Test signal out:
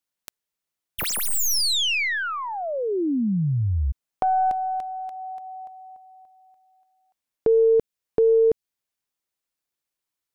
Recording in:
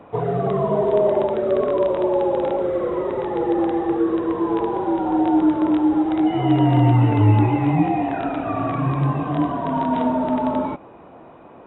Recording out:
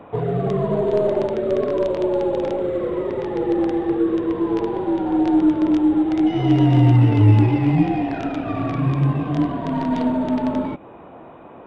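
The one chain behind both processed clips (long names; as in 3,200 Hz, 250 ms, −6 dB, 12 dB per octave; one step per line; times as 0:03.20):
stylus tracing distortion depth 0.068 ms
dynamic equaliser 930 Hz, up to −8 dB, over −36 dBFS, Q 0.82
level +2.5 dB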